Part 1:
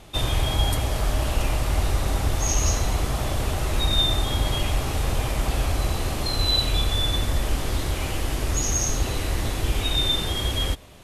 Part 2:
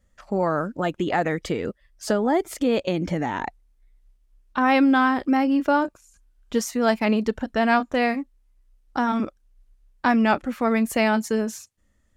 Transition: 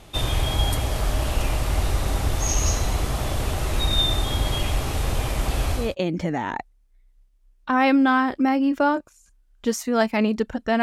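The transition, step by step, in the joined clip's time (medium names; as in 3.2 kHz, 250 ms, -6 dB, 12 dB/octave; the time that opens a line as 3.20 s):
part 1
5.84 s: go over to part 2 from 2.72 s, crossfade 0.22 s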